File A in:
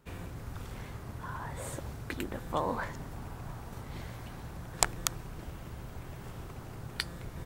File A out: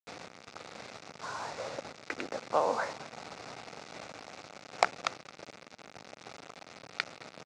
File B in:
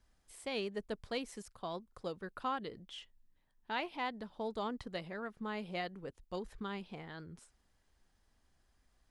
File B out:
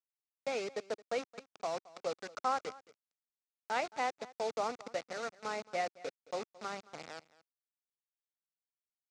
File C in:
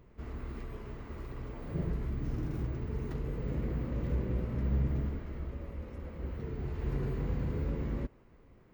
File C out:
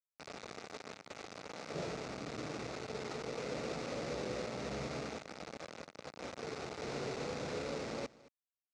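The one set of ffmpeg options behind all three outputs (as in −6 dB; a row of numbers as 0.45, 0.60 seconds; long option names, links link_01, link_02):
-filter_complex "[0:a]acrossover=split=450 3300:gain=0.112 1 0.2[link_01][link_02][link_03];[link_01][link_02][link_03]amix=inputs=3:normalize=0,adynamicsmooth=sensitivity=3:basefreq=2000,acrusher=bits=7:mix=0:aa=0.000001,highpass=150,equalizer=frequency=360:width_type=q:width=4:gain=-5,equalizer=frequency=1000:width_type=q:width=4:gain=-8,equalizer=frequency=1700:width_type=q:width=4:gain=-7,equalizer=frequency=3100:width_type=q:width=4:gain=-8,lowpass=frequency=6500:width=0.5412,lowpass=frequency=6500:width=1.3066,aecho=1:1:220:0.0944,volume=9.5dB"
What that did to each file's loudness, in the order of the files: +1.0, +3.0, −5.5 LU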